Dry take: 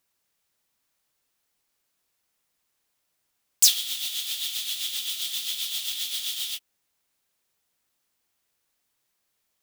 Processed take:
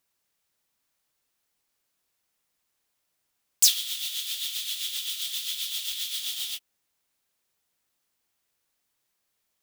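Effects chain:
0:03.67–0:06.23: high-pass filter 1,100 Hz 24 dB per octave
level −1.5 dB

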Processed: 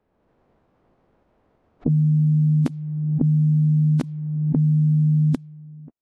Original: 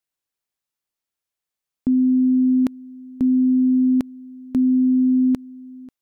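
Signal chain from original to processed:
low-pass that shuts in the quiet parts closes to 610 Hz, open at −15 dBFS
phase-vocoder pitch shift with formants kept −9 semitones
background raised ahead of every attack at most 29 dB per second

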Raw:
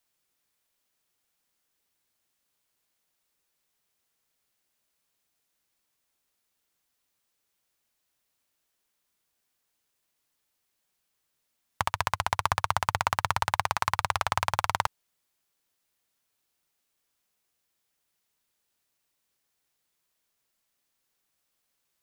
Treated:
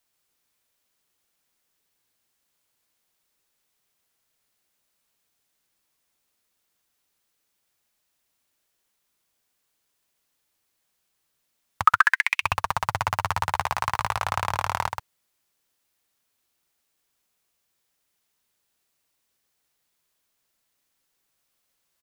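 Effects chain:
soft clipping −10.5 dBFS, distortion −15 dB
0:11.84–0:12.42: high-pass with resonance 1,200 Hz → 2,800 Hz, resonance Q 14
single-tap delay 129 ms −5.5 dB
level +2 dB

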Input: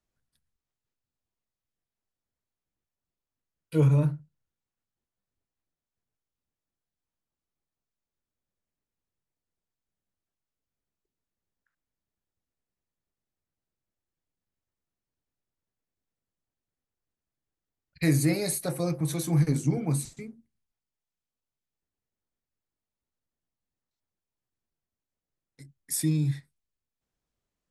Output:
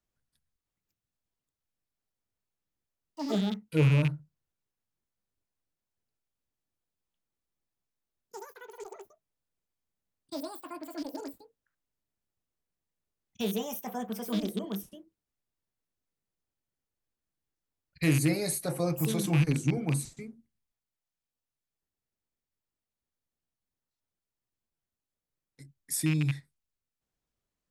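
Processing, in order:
loose part that buzzes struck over −22 dBFS, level −22 dBFS
0:18.70–0:19.41: parametric band 810 Hz +4 dB 1.6 octaves
delay with pitch and tempo change per echo 655 ms, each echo +6 semitones, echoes 3, each echo −6 dB
level −2 dB

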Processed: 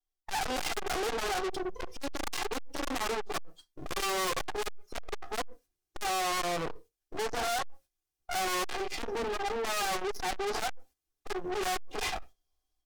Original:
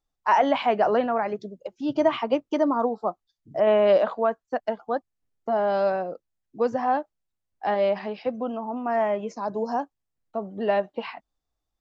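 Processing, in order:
lower of the sound and its delayed copy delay 2.3 ms
wrong playback speed 48 kHz file played as 44.1 kHz
automatic gain control gain up to 11 dB
noise gate −48 dBFS, range −13 dB
low-shelf EQ 65 Hz +5 dB
convolution reverb RT60 0.20 s, pre-delay 3 ms, DRR 2 dB
soft clipping −30 dBFS, distortion −1 dB
bass and treble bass −5 dB, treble +6 dB

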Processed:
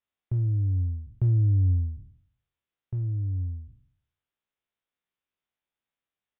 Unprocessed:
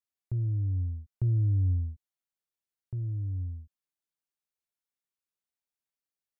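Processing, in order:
peak hold with a decay on every bin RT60 0.62 s
downsampling to 8,000 Hz
level +4 dB

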